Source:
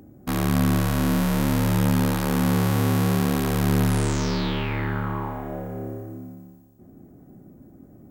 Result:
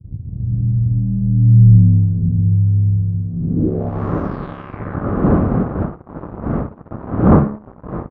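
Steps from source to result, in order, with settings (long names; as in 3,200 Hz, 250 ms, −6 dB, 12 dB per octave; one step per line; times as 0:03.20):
source passing by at 0:01.77, 25 m/s, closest 3.6 metres
wind on the microphone 240 Hz −33 dBFS
high-pass filter 48 Hz 12 dB per octave
notch filter 920 Hz, Q 5.2
hum removal 70.43 Hz, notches 32
dynamic equaliser 200 Hz, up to +5 dB, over −36 dBFS, Q 1.1
automatic gain control gain up to 11 dB
leveller curve on the samples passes 3
in parallel at −3 dB: downward compressor, threshold −22 dBFS, peak gain reduction 16.5 dB
on the sum: low-pass filter sweep 110 Hz → 1,200 Hz, 0:03.28–0:04.04
on a send: flutter between parallel walls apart 10.5 metres, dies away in 0.25 s
on the sum: downsampling to 16,000 Hz
level −4 dB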